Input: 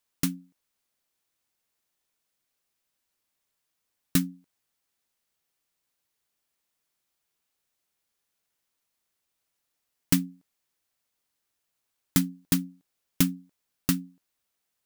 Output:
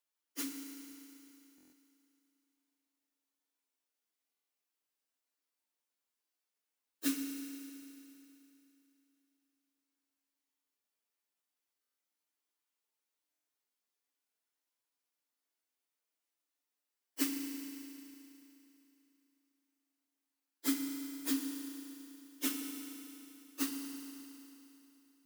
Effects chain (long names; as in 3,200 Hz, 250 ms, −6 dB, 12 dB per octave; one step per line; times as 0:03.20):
Chebyshev high-pass filter 220 Hz, order 8
time stretch by phase vocoder 1.7×
feedback delay network reverb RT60 3.1 s, high-frequency decay 0.95×, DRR 2.5 dB
buffer that repeats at 0:01.56/0:04.32/0:11.81/0:13.31, samples 1,024, times 6
level −7.5 dB